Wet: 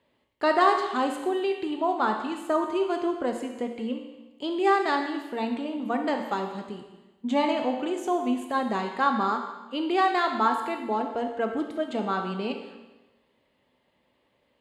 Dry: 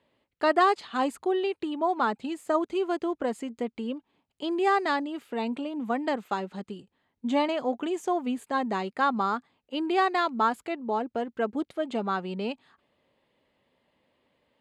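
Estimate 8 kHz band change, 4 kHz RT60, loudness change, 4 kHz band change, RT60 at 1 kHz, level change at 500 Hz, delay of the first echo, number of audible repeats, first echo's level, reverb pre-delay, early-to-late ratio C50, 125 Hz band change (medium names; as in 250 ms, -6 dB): +1.5 dB, 1.1 s, +1.5 dB, +1.5 dB, 1.1 s, +1.5 dB, no echo, no echo, no echo, 17 ms, 5.5 dB, no reading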